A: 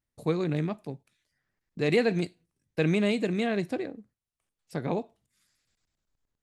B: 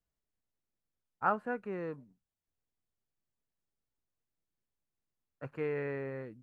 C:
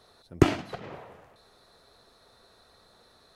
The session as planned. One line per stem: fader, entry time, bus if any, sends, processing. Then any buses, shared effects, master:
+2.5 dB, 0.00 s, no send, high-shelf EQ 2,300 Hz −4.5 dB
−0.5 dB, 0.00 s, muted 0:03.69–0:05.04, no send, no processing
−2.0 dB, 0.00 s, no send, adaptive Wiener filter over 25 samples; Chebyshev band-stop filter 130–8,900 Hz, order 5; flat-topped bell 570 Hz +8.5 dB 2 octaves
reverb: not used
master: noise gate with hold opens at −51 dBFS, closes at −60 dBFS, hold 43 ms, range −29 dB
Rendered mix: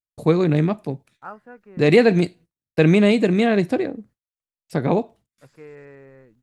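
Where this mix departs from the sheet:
stem A +2.5 dB → +10.5 dB
stem B −0.5 dB → −7.0 dB
stem C: muted

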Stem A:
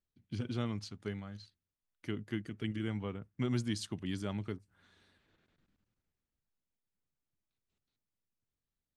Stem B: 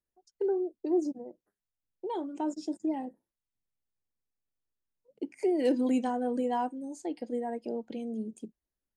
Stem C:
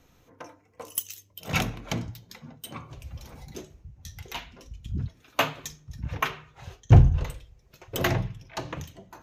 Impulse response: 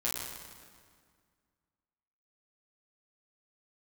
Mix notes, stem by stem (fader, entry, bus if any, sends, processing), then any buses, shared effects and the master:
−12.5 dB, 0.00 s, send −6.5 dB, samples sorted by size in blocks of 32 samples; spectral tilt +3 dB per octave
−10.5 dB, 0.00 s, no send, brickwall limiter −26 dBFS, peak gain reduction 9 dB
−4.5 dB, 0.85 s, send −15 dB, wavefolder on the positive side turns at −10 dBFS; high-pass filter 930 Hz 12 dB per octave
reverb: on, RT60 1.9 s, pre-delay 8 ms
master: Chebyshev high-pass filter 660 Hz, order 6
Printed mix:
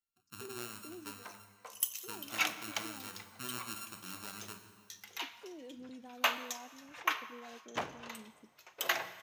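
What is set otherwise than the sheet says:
stem B −10.5 dB → −17.5 dB
master: missing Chebyshev high-pass filter 660 Hz, order 6

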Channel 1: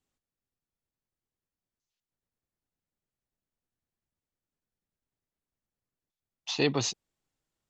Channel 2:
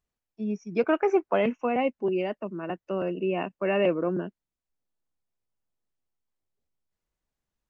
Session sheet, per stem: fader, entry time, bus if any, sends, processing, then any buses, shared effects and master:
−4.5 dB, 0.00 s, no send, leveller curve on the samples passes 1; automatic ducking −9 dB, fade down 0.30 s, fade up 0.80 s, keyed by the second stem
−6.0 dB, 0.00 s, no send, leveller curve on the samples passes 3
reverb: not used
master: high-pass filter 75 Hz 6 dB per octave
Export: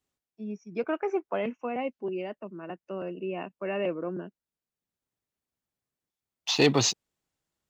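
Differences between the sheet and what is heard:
stem 1 −4.5 dB → +2.5 dB
stem 2: missing leveller curve on the samples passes 3

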